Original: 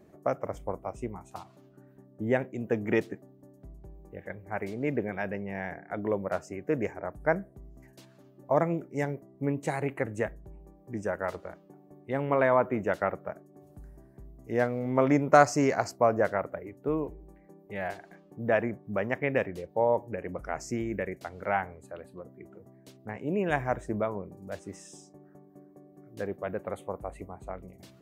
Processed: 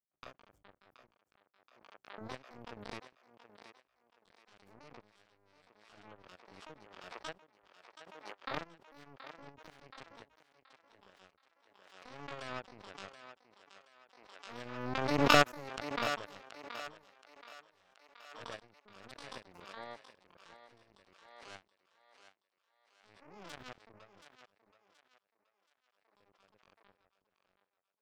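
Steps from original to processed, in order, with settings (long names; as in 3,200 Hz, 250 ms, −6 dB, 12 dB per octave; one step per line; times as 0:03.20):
parametric band 3,700 Hz −4 dB 2.5 octaves
notch filter 1,000 Hz, Q 8.2
power curve on the samples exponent 3
pitch-shifted copies added +12 semitones −3 dB
feedback echo with a high-pass in the loop 726 ms, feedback 37%, high-pass 410 Hz, level −10 dB
background raised ahead of every attack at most 39 dB per second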